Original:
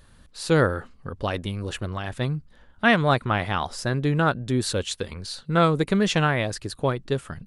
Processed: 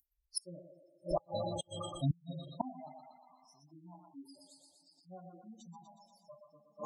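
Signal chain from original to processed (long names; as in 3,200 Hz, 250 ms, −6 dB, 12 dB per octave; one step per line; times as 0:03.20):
spectral dynamics exaggerated over time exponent 3
high-pass filter 130 Hz 6 dB per octave
phaser with its sweep stopped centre 400 Hz, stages 6
feedback echo with a high-pass in the loop 131 ms, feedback 68%, high-pass 350 Hz, level −4 dB
coupled-rooms reverb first 0.29 s, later 4.2 s, from −22 dB, DRR −1 dB
gate with flip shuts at −34 dBFS, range −38 dB
wrong playback speed 44.1 kHz file played as 48 kHz
flat-topped bell 2,200 Hz −9 dB
gate on every frequency bin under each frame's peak −15 dB strong
level +14 dB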